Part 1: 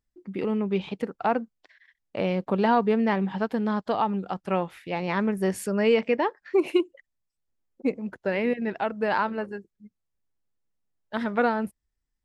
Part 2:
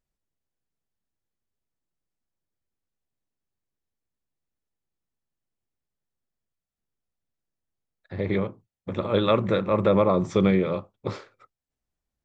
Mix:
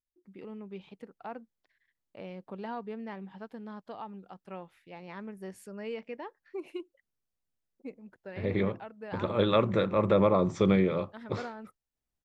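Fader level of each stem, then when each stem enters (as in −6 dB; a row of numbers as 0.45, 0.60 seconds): −17.0, −3.5 decibels; 0.00, 0.25 seconds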